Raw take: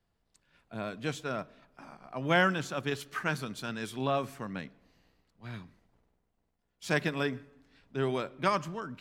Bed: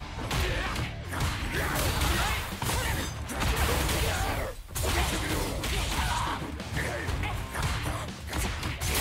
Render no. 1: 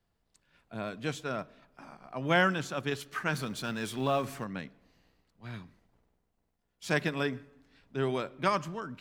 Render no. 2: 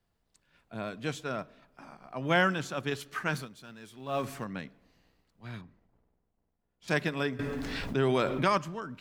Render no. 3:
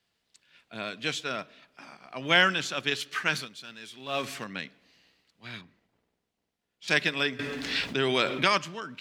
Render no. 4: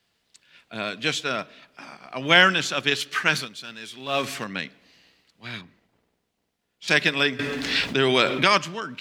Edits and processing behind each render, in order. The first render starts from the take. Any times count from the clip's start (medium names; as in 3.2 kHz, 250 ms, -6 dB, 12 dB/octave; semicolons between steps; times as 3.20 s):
3.33–4.44 s: companding laws mixed up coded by mu
3.35–4.20 s: dip -13.5 dB, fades 0.14 s; 5.61–6.88 s: low-pass 1.2 kHz 6 dB/octave; 7.39–8.58 s: level flattener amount 70%
frequency weighting D
trim +6 dB; peak limiter -3 dBFS, peak gain reduction 2 dB